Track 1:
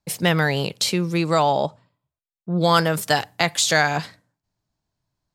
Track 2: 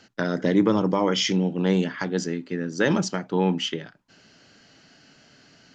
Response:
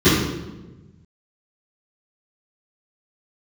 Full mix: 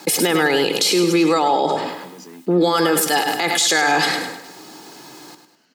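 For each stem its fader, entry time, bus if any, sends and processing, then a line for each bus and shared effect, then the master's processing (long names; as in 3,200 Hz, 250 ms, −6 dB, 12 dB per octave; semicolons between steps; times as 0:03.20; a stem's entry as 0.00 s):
+2.0 dB, 0.00 s, no send, echo send −9 dB, parametric band 310 Hz +5 dB 0.42 octaves; comb filter 2.4 ms, depth 60%; envelope flattener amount 70%
−11.5 dB, 0.00 s, no send, no echo send, compressor whose output falls as the input rises −27 dBFS; hard clipping −22 dBFS, distortion −12 dB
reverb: not used
echo: repeating echo 102 ms, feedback 42%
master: Butterworth high-pass 190 Hz 36 dB per octave; brickwall limiter −7.5 dBFS, peak gain reduction 11 dB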